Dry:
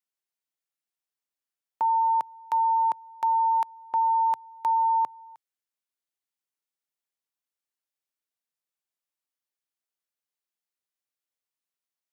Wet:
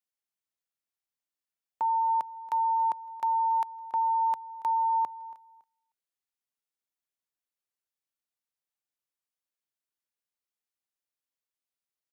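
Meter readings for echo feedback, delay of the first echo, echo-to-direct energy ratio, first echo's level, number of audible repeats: 25%, 280 ms, -19.5 dB, -20.0 dB, 2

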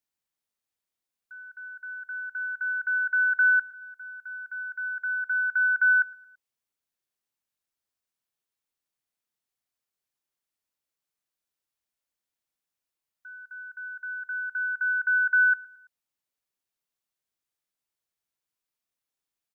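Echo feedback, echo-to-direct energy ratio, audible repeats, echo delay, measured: 40%, -19.0 dB, 2, 111 ms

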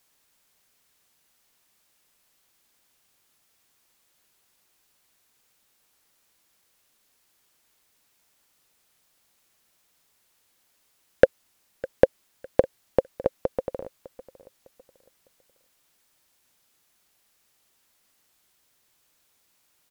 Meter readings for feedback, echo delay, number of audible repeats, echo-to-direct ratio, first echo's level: 32%, 605 ms, 2, -18.5 dB, -19.0 dB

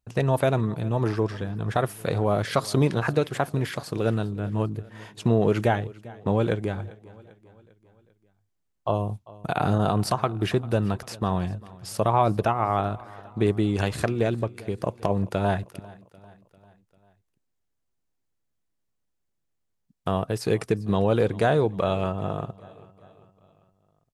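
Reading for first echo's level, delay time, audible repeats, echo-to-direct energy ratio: -21.0 dB, 396 ms, 3, -19.5 dB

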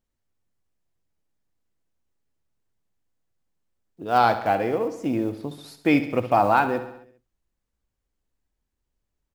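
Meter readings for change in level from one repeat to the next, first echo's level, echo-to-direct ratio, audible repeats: -4.5 dB, -12.0 dB, -10.0 dB, 5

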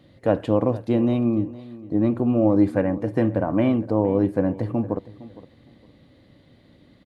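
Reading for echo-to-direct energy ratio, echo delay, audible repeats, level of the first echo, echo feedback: -18.0 dB, 461 ms, 2, -18.0 dB, 23%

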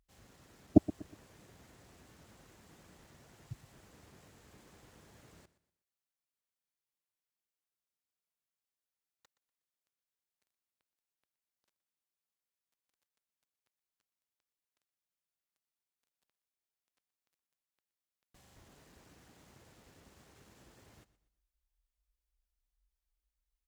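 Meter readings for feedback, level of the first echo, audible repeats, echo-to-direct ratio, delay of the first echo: 34%, -17.0 dB, 2, -16.5 dB, 121 ms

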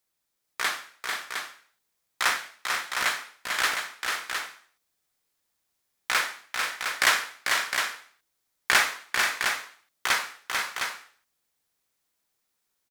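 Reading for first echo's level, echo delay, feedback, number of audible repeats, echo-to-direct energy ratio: -5.0 dB, 444 ms, no regular repeats, 3, -2.0 dB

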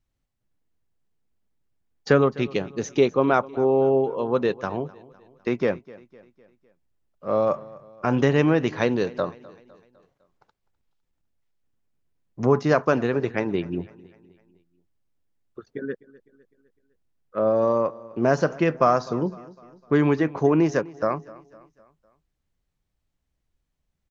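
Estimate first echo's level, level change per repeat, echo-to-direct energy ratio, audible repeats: -21.0 dB, -6.0 dB, -20.0 dB, 3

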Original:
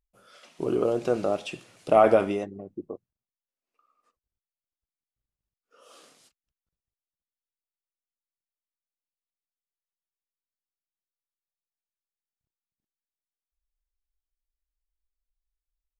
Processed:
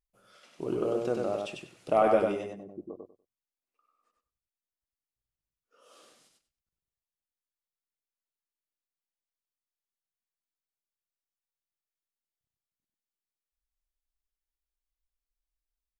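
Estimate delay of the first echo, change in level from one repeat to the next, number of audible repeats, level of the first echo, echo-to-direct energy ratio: 97 ms, -14.5 dB, 3, -3.5 dB, -3.5 dB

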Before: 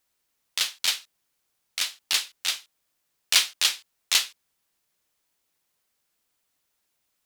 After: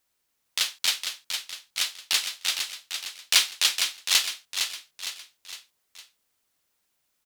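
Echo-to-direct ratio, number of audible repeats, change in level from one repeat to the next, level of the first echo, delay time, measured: -5.5 dB, 4, -6.5 dB, -6.5 dB, 459 ms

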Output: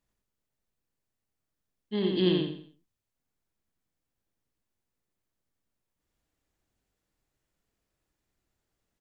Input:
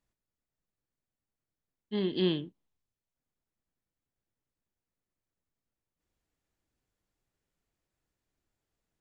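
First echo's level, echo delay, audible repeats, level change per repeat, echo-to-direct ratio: -3.0 dB, 87 ms, 4, -9.5 dB, -2.5 dB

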